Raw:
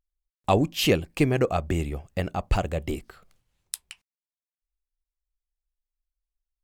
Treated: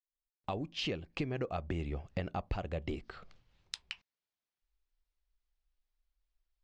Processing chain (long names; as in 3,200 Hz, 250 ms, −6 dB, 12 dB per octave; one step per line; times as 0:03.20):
fade in at the beginning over 1.97 s
low-pass filter 5,200 Hz 24 dB per octave
downward compressor 4 to 1, threshold −40 dBFS, peak gain reduction 19 dB
level +4 dB